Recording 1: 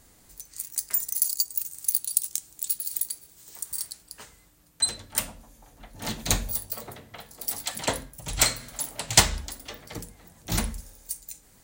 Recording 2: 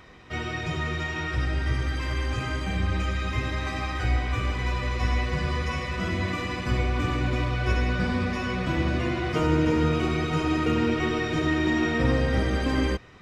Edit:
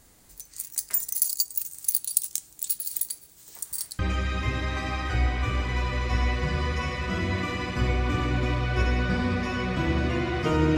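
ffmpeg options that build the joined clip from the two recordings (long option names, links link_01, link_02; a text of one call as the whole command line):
ffmpeg -i cue0.wav -i cue1.wav -filter_complex "[0:a]apad=whole_dur=10.77,atrim=end=10.77,atrim=end=3.992[link_01];[1:a]atrim=start=2.888:end=9.67[link_02];[link_01][link_02]acrossfade=duration=0.004:curve1=hsin:curve2=hsin" out.wav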